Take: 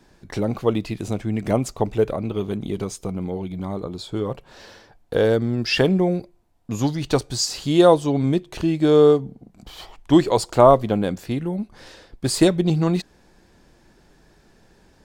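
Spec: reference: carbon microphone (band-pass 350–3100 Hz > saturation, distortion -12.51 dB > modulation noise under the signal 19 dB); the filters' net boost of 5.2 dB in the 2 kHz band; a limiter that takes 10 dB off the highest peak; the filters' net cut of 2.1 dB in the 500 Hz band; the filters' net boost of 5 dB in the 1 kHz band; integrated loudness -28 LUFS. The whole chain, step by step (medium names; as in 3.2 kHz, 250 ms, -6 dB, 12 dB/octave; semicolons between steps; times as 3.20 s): peaking EQ 500 Hz -3 dB; peaking EQ 1 kHz +6 dB; peaking EQ 2 kHz +6.5 dB; peak limiter -8 dBFS; band-pass 350–3100 Hz; saturation -16.5 dBFS; modulation noise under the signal 19 dB; trim +0.5 dB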